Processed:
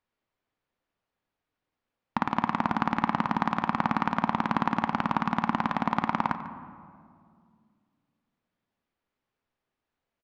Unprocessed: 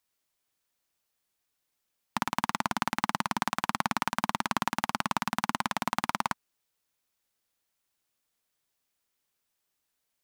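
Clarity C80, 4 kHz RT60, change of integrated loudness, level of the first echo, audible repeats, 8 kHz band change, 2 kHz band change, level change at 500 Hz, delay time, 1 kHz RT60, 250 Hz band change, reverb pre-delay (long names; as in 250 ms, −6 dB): 11.0 dB, 1.2 s, +3.0 dB, −16.5 dB, 1, below −15 dB, 0.0 dB, +4.0 dB, 146 ms, 2.0 s, +7.0 dB, 3 ms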